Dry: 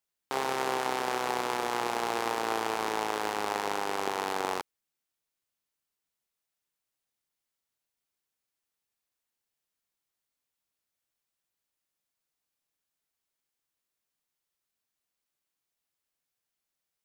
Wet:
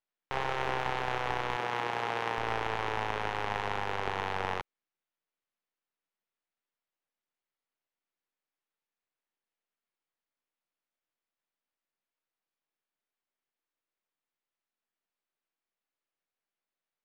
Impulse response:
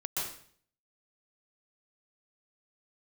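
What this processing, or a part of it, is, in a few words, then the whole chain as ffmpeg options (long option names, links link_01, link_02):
crystal radio: -filter_complex "[0:a]highpass=210,lowpass=2700,aeval=exprs='if(lt(val(0),0),0.251*val(0),val(0))':channel_layout=same,asettb=1/sr,asplit=3[link_01][link_02][link_03];[link_01]atrim=end=1.564[link_04];[link_02]atrim=start=1.56:end=2.38,asetpts=PTS-STARTPTS,afade=type=in:duration=0.004:curve=qsin,afade=type=out:start_time=0.816:duration=0.004:curve=qsin,highpass=140[link_05];[link_03]atrim=start=2.376[link_06];[link_04][link_05]acrossfade=duration=0.004:curve1=hsin:curve2=qsin[link_07];[link_07][link_06]acrossfade=duration=0.004:curve1=qsin:curve2=hsin,volume=2dB"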